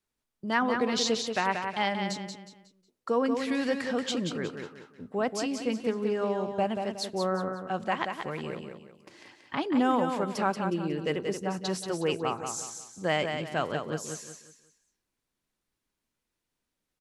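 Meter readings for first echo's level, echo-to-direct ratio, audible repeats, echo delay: -6.0 dB, -5.5 dB, 4, 182 ms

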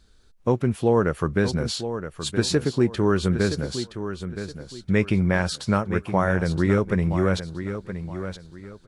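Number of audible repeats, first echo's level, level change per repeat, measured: 3, -10.0 dB, -10.5 dB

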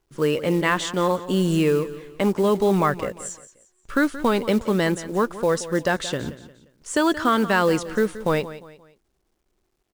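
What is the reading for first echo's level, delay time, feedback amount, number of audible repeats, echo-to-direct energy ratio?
-15.0 dB, 176 ms, 37%, 3, -14.5 dB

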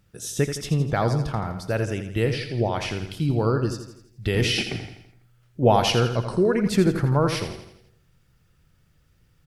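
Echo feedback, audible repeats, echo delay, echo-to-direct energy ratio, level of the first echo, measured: 50%, 5, 83 ms, -8.0 dB, -9.0 dB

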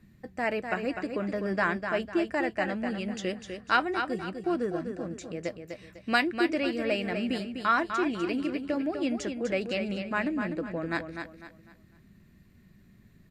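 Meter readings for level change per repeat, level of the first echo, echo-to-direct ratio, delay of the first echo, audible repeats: -9.5 dB, -7.0 dB, -6.5 dB, 250 ms, 3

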